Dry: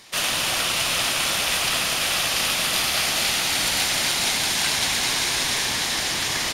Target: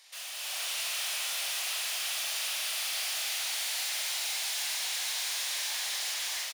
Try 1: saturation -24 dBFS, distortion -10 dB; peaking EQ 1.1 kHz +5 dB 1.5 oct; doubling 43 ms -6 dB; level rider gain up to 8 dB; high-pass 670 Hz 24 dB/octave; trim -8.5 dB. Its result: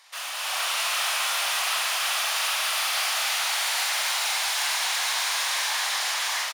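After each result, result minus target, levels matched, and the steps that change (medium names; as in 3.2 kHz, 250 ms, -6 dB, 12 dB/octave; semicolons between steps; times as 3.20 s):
1 kHz band +8.5 dB; saturation: distortion -4 dB
change: peaking EQ 1.1 kHz -7 dB 1.5 oct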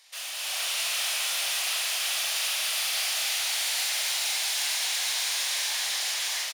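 saturation: distortion -4 dB
change: saturation -31 dBFS, distortion -6 dB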